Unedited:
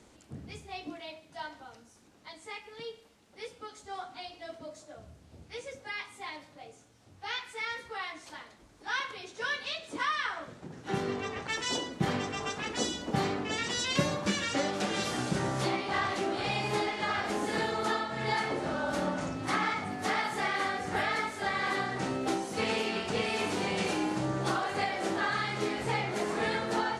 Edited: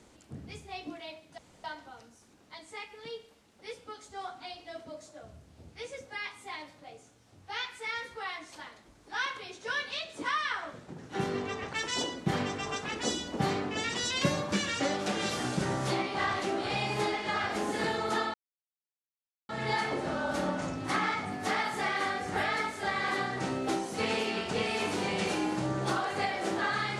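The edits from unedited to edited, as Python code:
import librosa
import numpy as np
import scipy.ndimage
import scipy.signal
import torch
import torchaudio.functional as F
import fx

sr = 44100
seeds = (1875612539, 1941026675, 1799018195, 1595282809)

y = fx.edit(x, sr, fx.insert_room_tone(at_s=1.38, length_s=0.26),
    fx.insert_silence(at_s=18.08, length_s=1.15), tone=tone)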